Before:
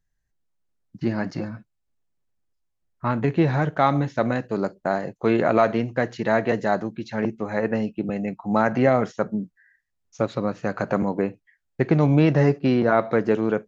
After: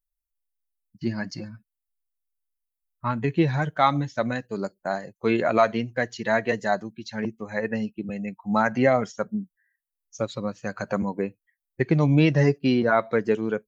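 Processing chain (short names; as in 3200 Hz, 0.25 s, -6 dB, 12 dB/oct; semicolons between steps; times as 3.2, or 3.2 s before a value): per-bin expansion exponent 1.5; high shelf 2100 Hz +9 dB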